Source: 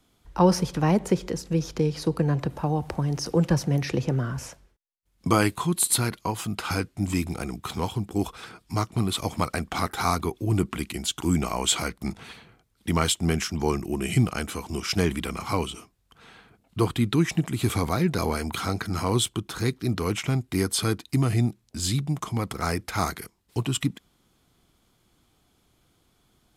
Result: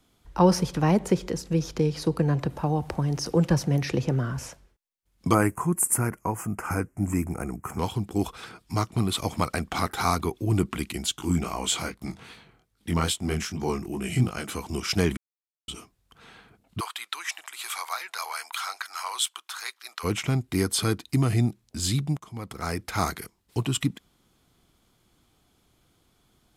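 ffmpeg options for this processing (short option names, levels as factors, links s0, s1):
-filter_complex "[0:a]asettb=1/sr,asplit=3[s0][s1][s2];[s0]atrim=end=5.344[s3];[s1]atrim=start=5.34:end=7.79,asetpts=PTS-STARTPTS,afade=t=in:d=0.004:c=qsin,afade=t=out:st=2.446:d=0.004:c=qsin,asuperstop=centerf=3800:order=4:qfactor=0.76[s4];[s2]atrim=start=7.786[s5];[s3][s4]acrossfade=d=0.004:c1=hsin:c2=qsin[s6];[s6][s5]acrossfade=d=0.004:c1=qsin:c2=hsin,asplit=3[s7][s8][s9];[s7]afade=t=out:st=11.15:d=0.02[s10];[s8]flanger=delay=19:depth=5.4:speed=2.5,afade=t=in:st=11.15:d=0.02,afade=t=out:st=14.46:d=0.02[s11];[s9]afade=t=in:st=14.46:d=0.02[s12];[s10][s11][s12]amix=inputs=3:normalize=0,asplit=3[s13][s14][s15];[s13]afade=t=out:st=16.79:d=0.02[s16];[s14]highpass=f=910:w=0.5412,highpass=f=910:w=1.3066,afade=t=in:st=16.79:d=0.02,afade=t=out:st=20.03:d=0.02[s17];[s15]afade=t=in:st=20.03:d=0.02[s18];[s16][s17][s18]amix=inputs=3:normalize=0,asplit=4[s19][s20][s21][s22];[s19]atrim=end=15.17,asetpts=PTS-STARTPTS,afade=t=out:st=15.166:d=0.004:c=hsin[s23];[s20]atrim=start=15.17:end=15.68,asetpts=PTS-STARTPTS,volume=0[s24];[s21]atrim=start=15.68:end=22.17,asetpts=PTS-STARTPTS,afade=t=in:d=0.004:c=hsin,afade=t=out:st=6.486:d=0.004:c=hsin:silence=0.125893[s25];[s22]atrim=start=22.17,asetpts=PTS-STARTPTS,afade=t=in:d=0.83:silence=0.125893[s26];[s23][s24][s25][s26]concat=n=4:v=0:a=1"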